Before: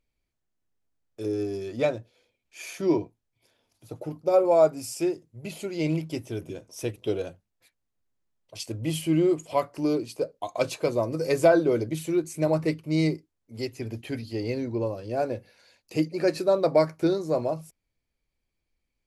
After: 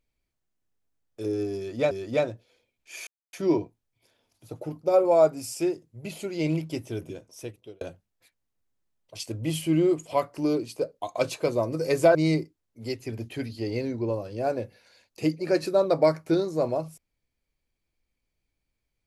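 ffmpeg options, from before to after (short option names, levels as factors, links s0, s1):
-filter_complex "[0:a]asplit=5[s0][s1][s2][s3][s4];[s0]atrim=end=1.912[s5];[s1]atrim=start=1.568:end=2.73,asetpts=PTS-STARTPTS,afade=t=out:st=1.158:d=0.004:c=hsin,apad=pad_dur=0.26[s6];[s2]atrim=start=2.73:end=7.21,asetpts=PTS-STARTPTS,afade=t=in:d=0.004:c=hsin,afade=t=out:st=3.69:d=0.79[s7];[s3]atrim=start=7.21:end=11.552,asetpts=PTS-STARTPTS,afade=t=in:d=0.004:c=hsin[s8];[s4]atrim=start=12.878[s9];[s6][s7][s8]concat=n=3:v=0:a=1[s10];[s5][s10]acrossfade=d=0.004:c1=hsin:c2=hsin[s11];[s11][s9]acrossfade=d=0.004:c1=hsin:c2=hsin"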